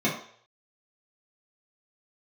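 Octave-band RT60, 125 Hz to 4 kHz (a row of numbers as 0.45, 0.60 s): 0.55, 0.40, 0.60, 0.55, 0.55, 0.60 s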